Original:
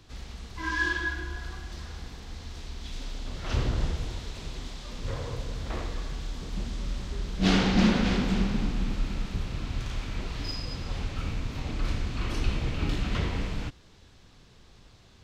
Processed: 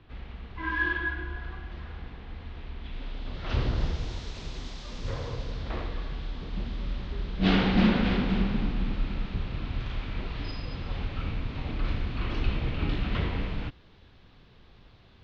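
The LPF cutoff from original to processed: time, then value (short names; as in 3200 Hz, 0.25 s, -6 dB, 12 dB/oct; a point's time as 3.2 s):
LPF 24 dB/oct
2.93 s 3000 Hz
4.18 s 6600 Hz
5.05 s 6600 Hz
5.89 s 3900 Hz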